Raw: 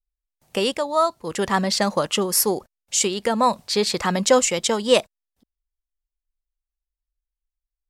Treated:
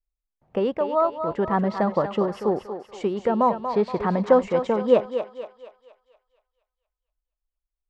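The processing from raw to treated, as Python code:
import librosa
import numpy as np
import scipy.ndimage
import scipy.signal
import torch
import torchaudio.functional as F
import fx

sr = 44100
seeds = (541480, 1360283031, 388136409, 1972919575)

p1 = scipy.signal.sosfilt(scipy.signal.butter(2, 1100.0, 'lowpass', fs=sr, output='sos'), x)
y = p1 + fx.echo_thinned(p1, sr, ms=236, feedback_pct=49, hz=440.0, wet_db=-7.0, dry=0)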